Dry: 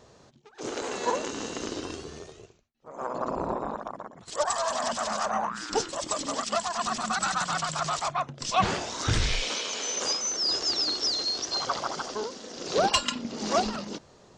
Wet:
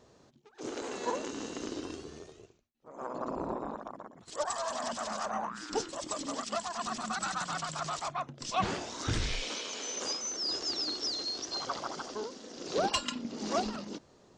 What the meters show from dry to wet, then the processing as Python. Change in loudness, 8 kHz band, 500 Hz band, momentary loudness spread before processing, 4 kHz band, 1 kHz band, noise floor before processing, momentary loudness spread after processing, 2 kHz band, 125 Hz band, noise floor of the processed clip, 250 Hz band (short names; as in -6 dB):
-6.5 dB, -7.0 dB, -6.0 dB, 13 LU, -7.0 dB, -6.5 dB, -56 dBFS, 12 LU, -7.0 dB, -6.5 dB, -62 dBFS, -3.5 dB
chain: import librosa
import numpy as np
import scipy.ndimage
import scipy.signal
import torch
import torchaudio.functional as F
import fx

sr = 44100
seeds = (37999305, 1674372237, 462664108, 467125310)

y = fx.peak_eq(x, sr, hz=290.0, db=5.0, octaves=0.9)
y = y * librosa.db_to_amplitude(-7.0)